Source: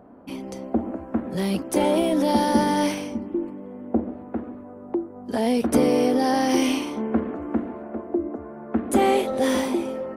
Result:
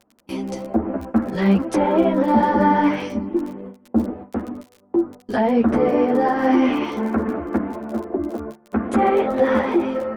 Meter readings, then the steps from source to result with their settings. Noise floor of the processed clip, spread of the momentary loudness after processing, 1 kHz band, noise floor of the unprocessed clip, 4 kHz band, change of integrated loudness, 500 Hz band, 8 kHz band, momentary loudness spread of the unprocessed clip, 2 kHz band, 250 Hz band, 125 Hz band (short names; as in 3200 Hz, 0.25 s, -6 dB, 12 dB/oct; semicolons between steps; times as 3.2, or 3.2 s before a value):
-56 dBFS, 12 LU, +5.0 dB, -41 dBFS, -5.5 dB, +3.5 dB, +3.5 dB, under -10 dB, 14 LU, +4.5 dB, +3.5 dB, +5.5 dB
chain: gate with hold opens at -28 dBFS; treble ducked by the level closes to 1600 Hz, closed at -19 dBFS; dynamic EQ 1600 Hz, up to +6 dB, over -42 dBFS, Q 1; limiter -13.5 dBFS, peak gain reduction 6 dB; crackle 18/s -32 dBFS; ensemble effect; gain +8 dB